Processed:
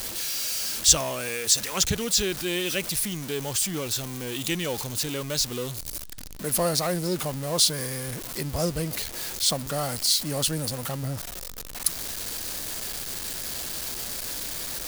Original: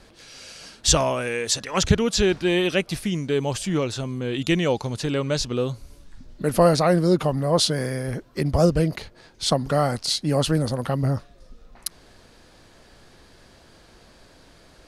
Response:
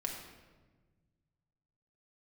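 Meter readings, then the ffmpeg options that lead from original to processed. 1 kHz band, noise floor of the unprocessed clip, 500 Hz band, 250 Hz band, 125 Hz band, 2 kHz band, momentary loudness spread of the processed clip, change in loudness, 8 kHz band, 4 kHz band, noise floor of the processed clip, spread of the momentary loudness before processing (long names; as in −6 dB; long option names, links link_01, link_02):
−7.0 dB, −53 dBFS, −8.5 dB, −8.5 dB, −8.0 dB, −3.0 dB, 10 LU, −3.5 dB, +5.0 dB, +1.0 dB, −37 dBFS, 11 LU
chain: -af "aeval=exprs='val(0)+0.5*0.0501*sgn(val(0))':channel_layout=same,crystalizer=i=4:c=0,volume=-10.5dB"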